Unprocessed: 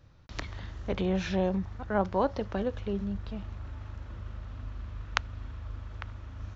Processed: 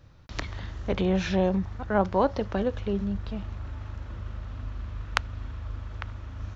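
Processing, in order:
soft clipping −5.5 dBFS, distortion −30 dB
level +4 dB

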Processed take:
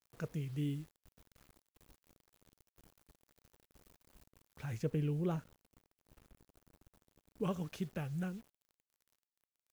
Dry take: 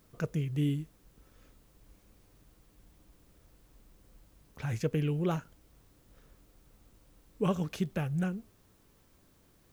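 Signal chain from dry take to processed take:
bit reduction 9 bits
0:04.81–0:07.43: tilt shelving filter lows +3.5 dB, about 770 Hz
level −7.5 dB

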